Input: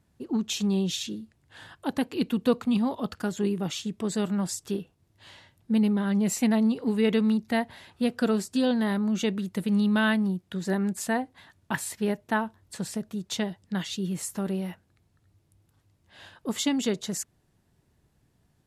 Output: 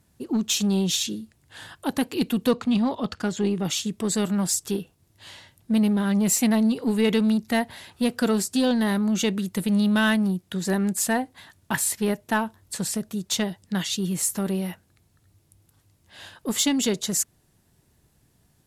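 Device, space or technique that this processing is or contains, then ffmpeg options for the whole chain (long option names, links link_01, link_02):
parallel distortion: -filter_complex "[0:a]aemphasis=mode=production:type=cd,asettb=1/sr,asplit=3[link_01][link_02][link_03];[link_01]atrim=end=2.514[link_04];[link_02]atrim=start=2.51:end=3.65,asetpts=PTS-STARTPTS,afade=type=in:duration=0.004:curve=qsin,afade=type=out:start_time=1.136:duration=0.004:curve=qsin,lowpass=5900[link_05];[link_03]atrim=start=3.646[link_06];[link_04][link_05]acrossfade=duration=0.004:curve1=hsin:curve2=qsin[link_07];[link_07][link_06]acrossfade=duration=0.004:curve1=qsin:curve2=hsin,asplit=2[link_08][link_09];[link_09]asoftclip=type=hard:threshold=-24.5dB,volume=-5dB[link_10];[link_08][link_10]amix=inputs=2:normalize=0"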